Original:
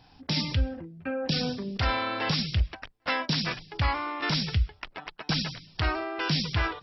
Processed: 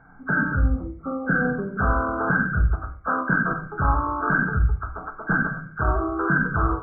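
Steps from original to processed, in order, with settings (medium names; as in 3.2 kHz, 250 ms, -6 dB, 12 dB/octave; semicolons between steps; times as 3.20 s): knee-point frequency compression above 1.1 kHz 4:1; dynamic bell 410 Hz, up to +4 dB, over -50 dBFS, Q 2.3; reverberation RT60 0.45 s, pre-delay 5 ms, DRR 3 dB; trim +2.5 dB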